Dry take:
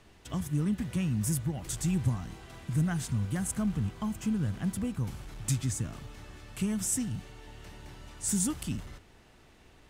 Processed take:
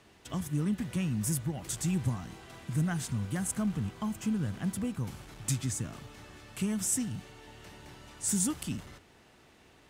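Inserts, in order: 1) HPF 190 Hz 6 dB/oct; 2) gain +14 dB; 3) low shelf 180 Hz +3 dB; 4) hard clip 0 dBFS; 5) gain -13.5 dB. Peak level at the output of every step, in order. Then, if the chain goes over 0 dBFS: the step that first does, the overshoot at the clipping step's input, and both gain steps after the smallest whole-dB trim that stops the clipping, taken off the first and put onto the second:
-17.5, -3.5, -3.0, -3.0, -16.5 dBFS; no overload

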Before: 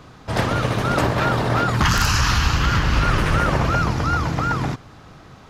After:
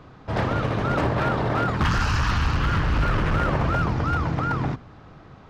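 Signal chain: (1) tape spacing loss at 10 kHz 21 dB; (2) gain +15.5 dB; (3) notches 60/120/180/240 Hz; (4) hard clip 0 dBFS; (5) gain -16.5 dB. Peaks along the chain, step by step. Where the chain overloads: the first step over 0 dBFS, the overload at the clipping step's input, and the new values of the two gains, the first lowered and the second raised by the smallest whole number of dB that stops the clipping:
-6.5, +9.0, +8.0, 0.0, -16.5 dBFS; step 2, 8.0 dB; step 2 +7.5 dB, step 5 -8.5 dB

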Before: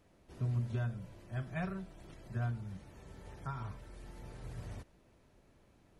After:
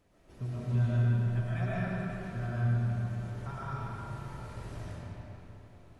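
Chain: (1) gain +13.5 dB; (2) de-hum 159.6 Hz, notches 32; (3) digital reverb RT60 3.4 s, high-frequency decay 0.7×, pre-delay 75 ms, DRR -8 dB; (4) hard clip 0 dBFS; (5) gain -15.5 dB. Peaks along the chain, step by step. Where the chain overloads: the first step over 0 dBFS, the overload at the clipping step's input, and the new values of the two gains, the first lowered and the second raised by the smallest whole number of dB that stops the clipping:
-12.0, -12.0, -4.0, -4.0, -19.5 dBFS; no overload

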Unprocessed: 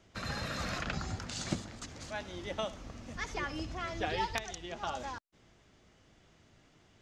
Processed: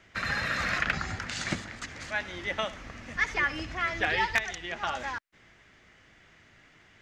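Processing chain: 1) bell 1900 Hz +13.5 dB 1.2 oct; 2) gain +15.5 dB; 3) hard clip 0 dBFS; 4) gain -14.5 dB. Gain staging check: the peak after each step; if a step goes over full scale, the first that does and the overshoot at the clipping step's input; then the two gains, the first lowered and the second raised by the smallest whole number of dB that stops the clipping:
-11.0, +4.5, 0.0, -14.5 dBFS; step 2, 4.5 dB; step 2 +10.5 dB, step 4 -9.5 dB

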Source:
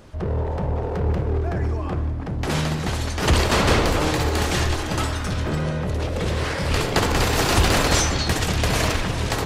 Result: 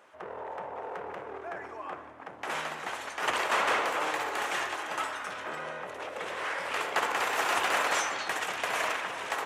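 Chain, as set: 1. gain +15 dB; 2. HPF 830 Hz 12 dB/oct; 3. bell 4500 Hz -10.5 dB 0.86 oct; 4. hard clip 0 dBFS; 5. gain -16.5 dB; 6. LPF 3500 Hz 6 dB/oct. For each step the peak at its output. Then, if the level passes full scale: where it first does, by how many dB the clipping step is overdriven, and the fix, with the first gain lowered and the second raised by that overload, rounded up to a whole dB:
+9.5, +7.0, +5.0, 0.0, -16.5, -16.5 dBFS; step 1, 5.0 dB; step 1 +10 dB, step 5 -11.5 dB

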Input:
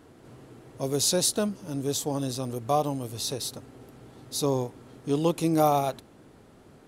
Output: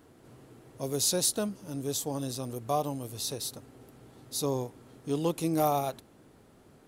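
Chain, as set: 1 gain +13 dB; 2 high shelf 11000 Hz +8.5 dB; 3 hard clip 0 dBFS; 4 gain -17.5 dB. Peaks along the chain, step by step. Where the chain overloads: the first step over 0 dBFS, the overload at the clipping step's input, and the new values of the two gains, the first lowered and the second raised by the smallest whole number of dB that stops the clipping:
+2.5, +3.5, 0.0, -17.5 dBFS; step 1, 3.5 dB; step 1 +9 dB, step 4 -13.5 dB

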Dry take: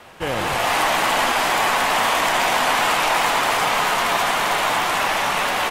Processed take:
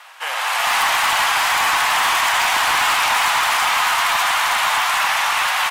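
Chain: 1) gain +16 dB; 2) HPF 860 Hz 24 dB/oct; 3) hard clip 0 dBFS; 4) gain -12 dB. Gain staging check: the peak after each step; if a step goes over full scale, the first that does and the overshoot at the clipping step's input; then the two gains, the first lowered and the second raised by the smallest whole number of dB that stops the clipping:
+10.0, +8.0, 0.0, -12.0 dBFS; step 1, 8.0 dB; step 1 +8 dB, step 4 -4 dB

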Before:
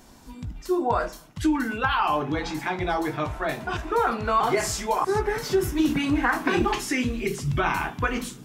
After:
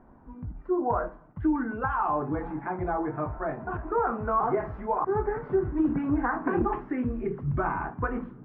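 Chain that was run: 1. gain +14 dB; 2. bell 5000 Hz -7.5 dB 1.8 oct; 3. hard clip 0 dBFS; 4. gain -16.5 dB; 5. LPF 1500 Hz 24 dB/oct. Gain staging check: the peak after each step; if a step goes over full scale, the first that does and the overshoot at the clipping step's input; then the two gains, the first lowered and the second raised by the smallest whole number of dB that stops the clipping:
+4.0, +3.5, 0.0, -16.5, -15.5 dBFS; step 1, 3.5 dB; step 1 +10 dB, step 4 -12.5 dB

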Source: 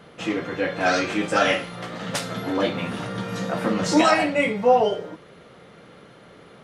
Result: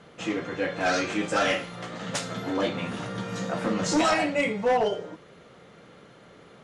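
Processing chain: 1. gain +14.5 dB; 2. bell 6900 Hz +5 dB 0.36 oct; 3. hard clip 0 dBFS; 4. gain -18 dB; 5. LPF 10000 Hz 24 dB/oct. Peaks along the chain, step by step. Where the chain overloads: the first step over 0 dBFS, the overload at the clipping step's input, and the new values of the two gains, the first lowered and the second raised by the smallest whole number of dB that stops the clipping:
+8.5, +9.0, 0.0, -18.0, -16.0 dBFS; step 1, 9.0 dB; step 1 +5.5 dB, step 4 -9 dB

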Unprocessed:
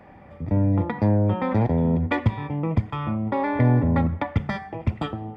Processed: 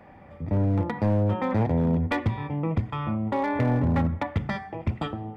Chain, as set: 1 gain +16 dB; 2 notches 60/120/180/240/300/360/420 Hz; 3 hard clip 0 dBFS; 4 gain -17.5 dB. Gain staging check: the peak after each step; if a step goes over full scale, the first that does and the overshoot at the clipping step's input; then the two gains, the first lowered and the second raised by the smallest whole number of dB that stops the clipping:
+7.0, +6.0, 0.0, -17.5 dBFS; step 1, 6.0 dB; step 1 +10 dB, step 4 -11.5 dB

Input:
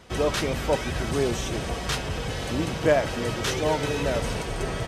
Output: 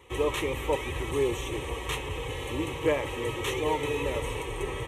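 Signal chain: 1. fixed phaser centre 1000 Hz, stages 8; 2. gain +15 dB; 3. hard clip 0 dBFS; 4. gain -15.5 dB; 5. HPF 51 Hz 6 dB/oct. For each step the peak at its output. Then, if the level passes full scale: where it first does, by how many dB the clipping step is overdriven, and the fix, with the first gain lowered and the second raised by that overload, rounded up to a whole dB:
-12.0, +3.0, 0.0, -15.5, -14.5 dBFS; step 2, 3.0 dB; step 2 +12 dB, step 4 -12.5 dB

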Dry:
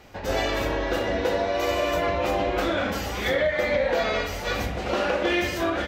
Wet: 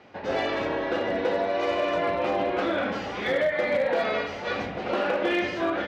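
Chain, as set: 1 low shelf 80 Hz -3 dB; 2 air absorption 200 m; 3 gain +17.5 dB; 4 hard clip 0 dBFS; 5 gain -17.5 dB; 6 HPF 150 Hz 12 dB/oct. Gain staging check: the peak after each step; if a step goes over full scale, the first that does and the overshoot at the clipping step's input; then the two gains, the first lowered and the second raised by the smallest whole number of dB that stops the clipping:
-11.5, -13.5, +4.0, 0.0, -17.5, -14.5 dBFS; step 3, 4.0 dB; step 3 +13.5 dB, step 5 -13.5 dB

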